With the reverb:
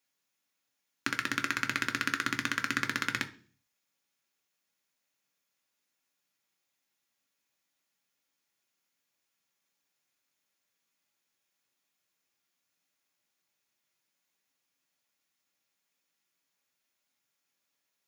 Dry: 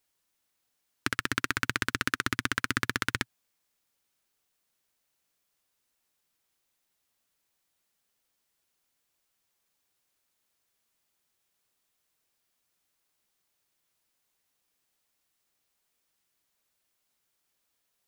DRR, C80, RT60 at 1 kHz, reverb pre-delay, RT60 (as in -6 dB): 4.5 dB, 20.5 dB, 0.40 s, 3 ms, 0.45 s